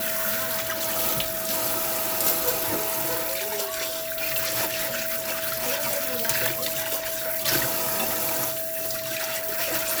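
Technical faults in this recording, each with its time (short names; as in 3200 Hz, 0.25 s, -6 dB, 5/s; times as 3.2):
tone 650 Hz -32 dBFS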